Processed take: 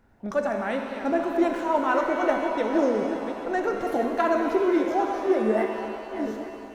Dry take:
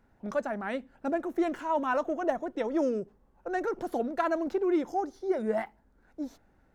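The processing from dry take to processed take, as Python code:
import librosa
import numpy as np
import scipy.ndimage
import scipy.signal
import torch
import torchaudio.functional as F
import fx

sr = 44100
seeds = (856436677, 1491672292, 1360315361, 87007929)

y = fx.reverse_delay_fb(x, sr, ms=421, feedback_pct=47, wet_db=-10.0)
y = fx.rev_shimmer(y, sr, seeds[0], rt60_s=2.4, semitones=7, shimmer_db=-8, drr_db=4.0)
y = y * 10.0 ** (4.0 / 20.0)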